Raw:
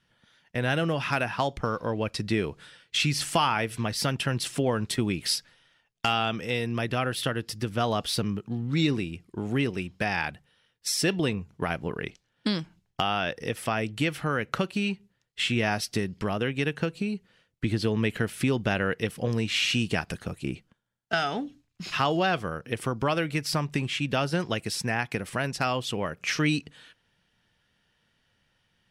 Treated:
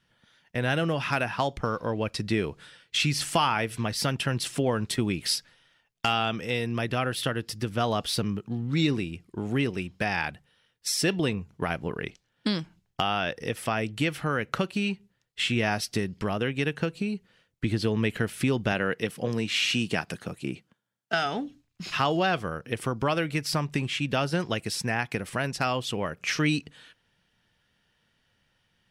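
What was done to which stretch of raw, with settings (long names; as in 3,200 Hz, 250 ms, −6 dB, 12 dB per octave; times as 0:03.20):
0:18.72–0:21.26: high-pass filter 130 Hz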